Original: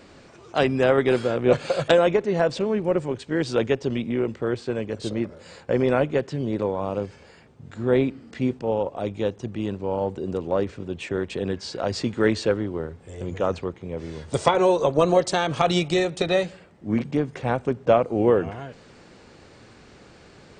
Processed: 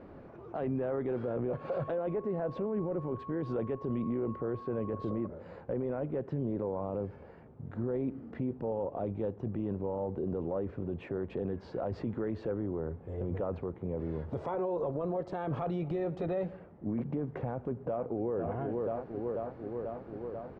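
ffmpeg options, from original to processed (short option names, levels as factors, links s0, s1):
-filter_complex "[0:a]asettb=1/sr,asplit=3[s0][s1][s2];[s0]atrim=end=1.504[s3];[s1]atrim=start=1.5:end=5.27,asetpts=PTS-STARTPTS,afade=t=in:d=0.004:c=qsin,afade=t=out:st=3.766:d=0.004:c=qsin,aeval=exprs='val(0)+0.0112*sin(2*PI*1100*n/s)':c=same[s4];[s2]atrim=start=5.266[s5];[s3][s4]acrossfade=d=0.004:c1=hsin:c2=qsin[s6];[s6][s5]acrossfade=d=0.004:c1=qsin:c2=hsin,asplit=2[s7][s8];[s8]afade=t=in:st=17.47:d=0.01,afade=t=out:st=18.38:d=0.01,aecho=0:1:490|980|1470|1960|2450|2940|3430|3920|4410|4900|5390:0.177828|0.133371|0.100028|0.0750212|0.0562659|0.0421994|0.0316496|0.0237372|0.0178029|0.0133522|0.0100141[s9];[s7][s9]amix=inputs=2:normalize=0,lowpass=1000,acompressor=threshold=0.0631:ratio=6,alimiter=level_in=1.26:limit=0.0631:level=0:latency=1:release=14,volume=0.794"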